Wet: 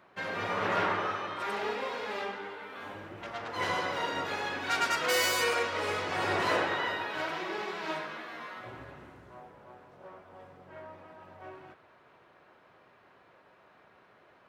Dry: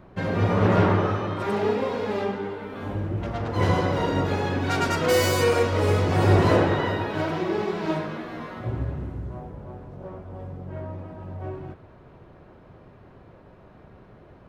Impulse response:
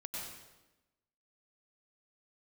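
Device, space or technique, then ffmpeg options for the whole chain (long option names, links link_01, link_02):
filter by subtraction: -filter_complex "[0:a]asettb=1/sr,asplit=3[link_01][link_02][link_03];[link_01]atrim=end=5.544[link_04];[link_02]atrim=start=5.54:end=6.4,asetpts=PTS-STARTPTS,afade=type=in:duration=0.004:curve=qsin,afade=type=out:start_time=0.856:duration=0.004:curve=qsin,highshelf=frequency=8900:gain=-8.5[link_05];[link_03]atrim=start=6.396[link_06];[link_04][link_05]acrossfade=duration=0.004:curve1=hsin:curve2=qsin[link_07];[link_07][link_06]acrossfade=duration=0.004:curve1=qsin:curve2=hsin,asplit=2[link_08][link_09];[link_09]lowpass=1800,volume=-1[link_10];[link_08][link_10]amix=inputs=2:normalize=0,volume=-2.5dB"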